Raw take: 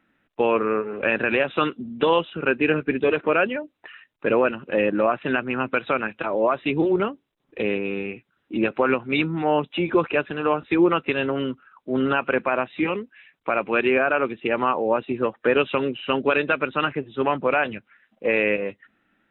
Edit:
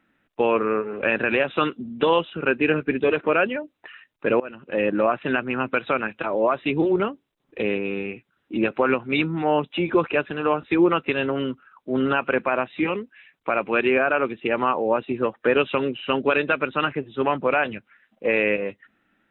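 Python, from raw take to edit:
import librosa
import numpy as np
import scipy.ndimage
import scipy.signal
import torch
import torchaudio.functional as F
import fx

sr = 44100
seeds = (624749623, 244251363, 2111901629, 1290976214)

y = fx.edit(x, sr, fx.fade_in_from(start_s=4.4, length_s=0.5, floor_db=-22.0), tone=tone)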